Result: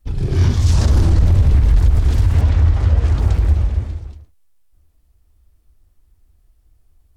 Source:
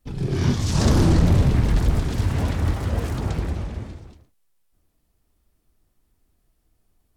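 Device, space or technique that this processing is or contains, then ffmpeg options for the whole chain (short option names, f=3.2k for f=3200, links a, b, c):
car stereo with a boomy subwoofer: -filter_complex "[0:a]asettb=1/sr,asplit=3[a][b][c];[a]atrim=end=2.414[d];[b]atrim=start=2.41:end=3.19,asetpts=PTS-STARTPTS,afade=t=in:d=0.004:c=qsin,afade=t=out:st=0.776:d=0.004:c=qsin,lowpass=6.4k[e];[c]atrim=start=3.186[f];[d][e]acrossfade=d=0.004:c1=hsin:c2=qsin[g];[g][f]acrossfade=d=0.004:c1=qsin:c2=hsin,lowshelf=f=110:t=q:w=1.5:g=10,alimiter=limit=-7.5dB:level=0:latency=1:release=73,volume=2dB"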